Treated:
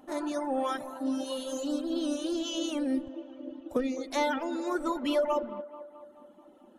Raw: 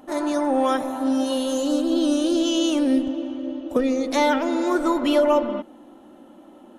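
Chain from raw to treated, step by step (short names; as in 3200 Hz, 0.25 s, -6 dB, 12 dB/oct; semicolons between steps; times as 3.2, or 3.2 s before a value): reverb removal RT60 1.4 s; band-limited delay 0.217 s, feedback 58%, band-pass 790 Hz, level -13.5 dB; gain -7.5 dB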